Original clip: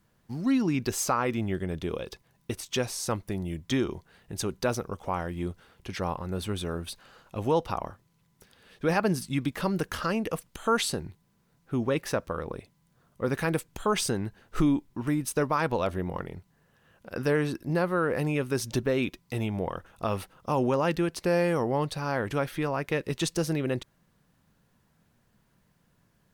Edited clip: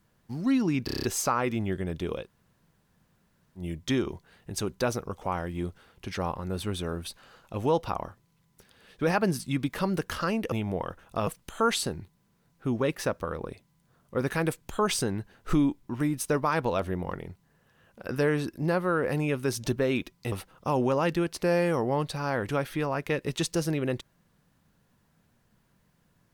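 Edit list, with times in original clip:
0.85 stutter 0.03 s, 7 plays
2.06–3.42 room tone, crossfade 0.10 s
19.39–20.14 move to 10.34

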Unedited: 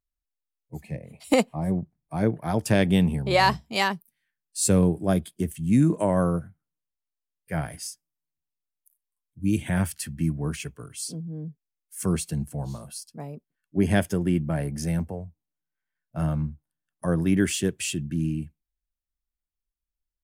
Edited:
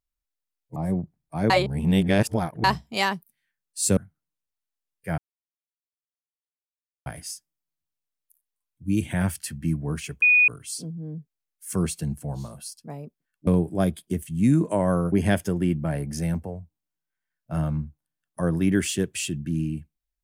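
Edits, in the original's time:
0.76–1.55 cut
2.29–3.43 reverse
4.76–6.41 move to 13.77
7.62 insert silence 1.88 s
10.78 add tone 2470 Hz -13.5 dBFS 0.26 s

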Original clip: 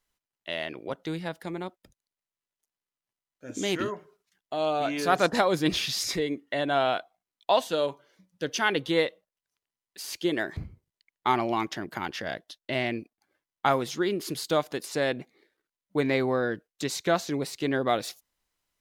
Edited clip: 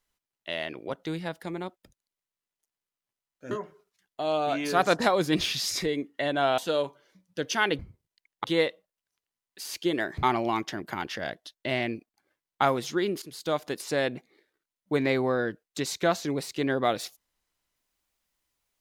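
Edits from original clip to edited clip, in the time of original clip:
3.51–3.84 cut
6.91–7.62 cut
10.62–11.27 move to 8.83
14.26–14.71 fade in, from -16.5 dB

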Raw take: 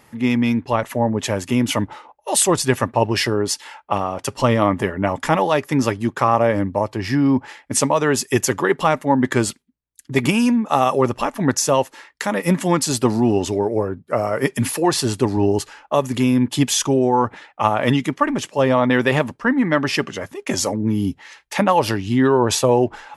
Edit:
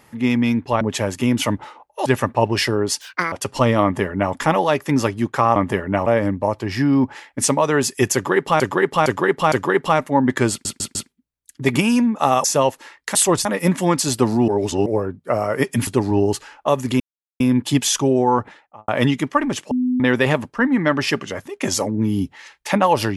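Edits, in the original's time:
0.81–1.1 cut
2.35–2.65 move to 12.28
3.6–4.15 speed 177%
4.66–5.16 copy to 6.39
8.47–8.93 loop, 4 plays
9.45 stutter 0.15 s, 4 plays
10.94–11.57 cut
13.31–13.69 reverse
14.7–15.13 cut
16.26 insert silence 0.40 s
17.21–17.74 studio fade out
18.57–18.86 bleep 251 Hz -16 dBFS

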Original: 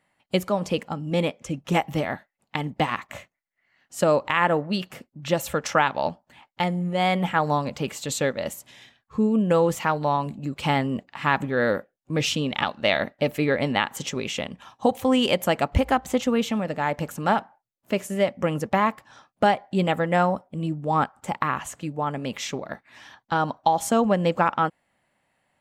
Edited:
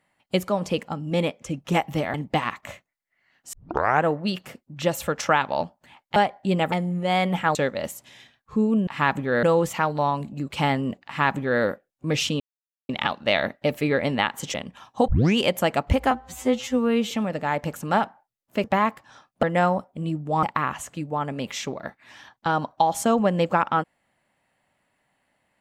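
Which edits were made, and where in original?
2.14–2.6 cut
3.99 tape start 0.52 s
7.45–8.17 cut
11.12–11.68 copy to 9.49
12.46 insert silence 0.49 s
14.11–14.39 cut
14.93 tape start 0.29 s
15.96–16.46 stretch 2×
17.99–18.65 cut
19.44–20 move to 6.62
21–21.29 cut

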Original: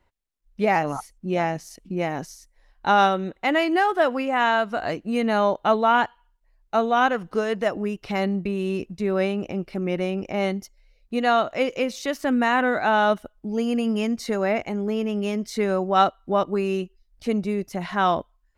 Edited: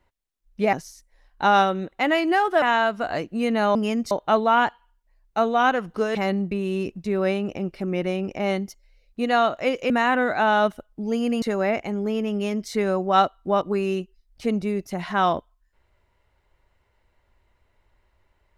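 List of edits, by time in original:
0.73–2.17 cut
4.06–4.35 cut
7.52–8.09 cut
11.84–12.36 cut
13.88–14.24 move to 5.48

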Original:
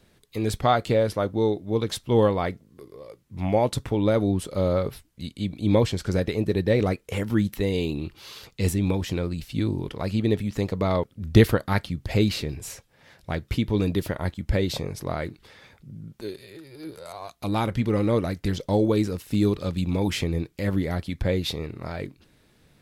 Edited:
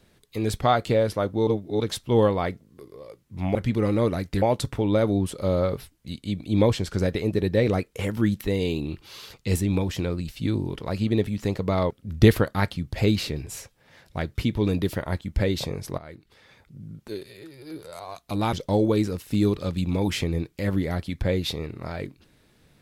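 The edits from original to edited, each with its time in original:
1.47–1.8 reverse
15.11–16.01 fade in linear, from -17 dB
17.66–18.53 move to 3.55

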